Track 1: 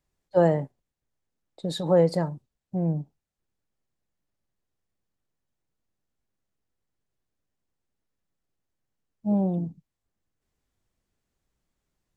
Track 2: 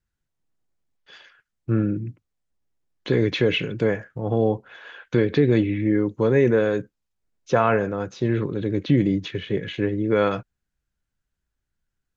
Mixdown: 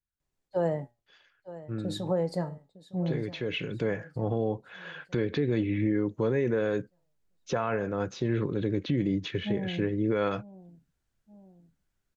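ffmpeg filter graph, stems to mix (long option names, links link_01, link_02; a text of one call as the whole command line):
ffmpeg -i stem1.wav -i stem2.wav -filter_complex "[0:a]flanger=delay=7.1:depth=4.6:regen=79:speed=0.2:shape=triangular,adelay=200,volume=-0.5dB,asplit=2[link_01][link_02];[link_02]volume=-18.5dB[link_03];[1:a]volume=-1dB,afade=type=in:start_time=3.45:duration=0.55:silence=0.237137[link_04];[link_03]aecho=0:1:910|1820|2730|3640|4550|5460|6370:1|0.48|0.23|0.111|0.0531|0.0255|0.0122[link_05];[link_01][link_04][link_05]amix=inputs=3:normalize=0,alimiter=limit=-18dB:level=0:latency=1:release=338" out.wav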